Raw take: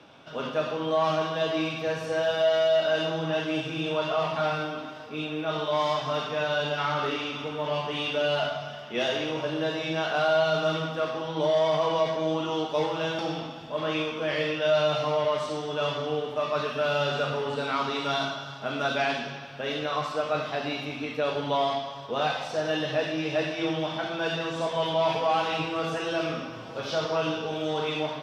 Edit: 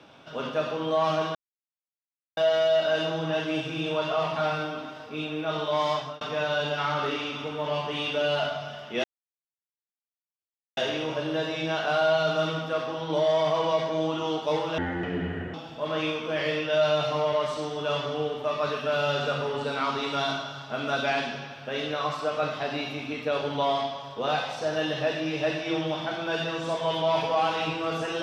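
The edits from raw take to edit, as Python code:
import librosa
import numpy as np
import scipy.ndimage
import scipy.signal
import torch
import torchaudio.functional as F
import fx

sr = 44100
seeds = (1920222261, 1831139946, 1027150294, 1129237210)

y = fx.edit(x, sr, fx.silence(start_s=1.35, length_s=1.02),
    fx.fade_out_span(start_s=5.95, length_s=0.26),
    fx.insert_silence(at_s=9.04, length_s=1.73),
    fx.speed_span(start_s=13.05, length_s=0.41, speed=0.54), tone=tone)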